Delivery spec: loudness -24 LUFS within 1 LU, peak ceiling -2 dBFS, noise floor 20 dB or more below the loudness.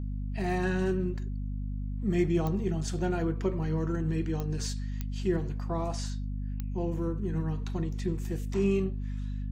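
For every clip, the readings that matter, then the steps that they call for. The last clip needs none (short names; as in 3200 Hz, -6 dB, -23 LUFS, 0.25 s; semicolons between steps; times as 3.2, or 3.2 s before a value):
clicks 4; hum 50 Hz; harmonics up to 250 Hz; hum level -31 dBFS; loudness -31.5 LUFS; peak -15.5 dBFS; loudness target -24.0 LUFS
-> de-click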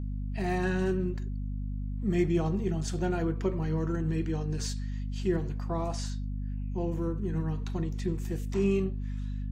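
clicks 0; hum 50 Hz; harmonics up to 250 Hz; hum level -31 dBFS
-> de-hum 50 Hz, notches 5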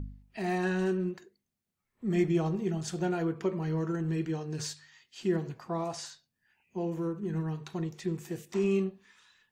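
hum none; loudness -32.5 LUFS; peak -17.0 dBFS; loudness target -24.0 LUFS
-> gain +8.5 dB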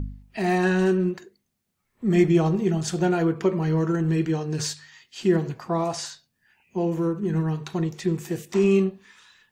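loudness -24.0 LUFS; peak -8.5 dBFS; noise floor -76 dBFS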